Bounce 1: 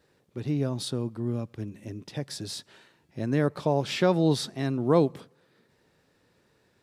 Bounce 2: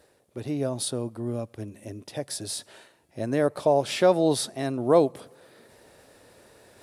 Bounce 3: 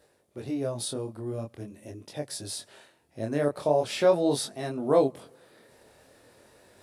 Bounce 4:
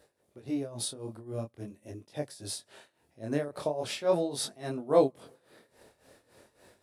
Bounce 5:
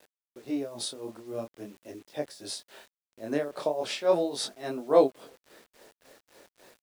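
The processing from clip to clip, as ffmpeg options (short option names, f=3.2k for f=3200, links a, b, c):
-af "equalizer=f=160:t=o:w=0.67:g=-7,equalizer=f=630:t=o:w=0.67:g=8,equalizer=f=10k:t=o:w=0.67:g=12,areverse,acompressor=mode=upward:threshold=-43dB:ratio=2.5,areverse"
-af "flanger=delay=20:depth=7.8:speed=0.43"
-af "tremolo=f=3.6:d=0.82"
-af "highpass=250,lowpass=7.6k,acrusher=bits=9:mix=0:aa=0.000001,volume=3dB"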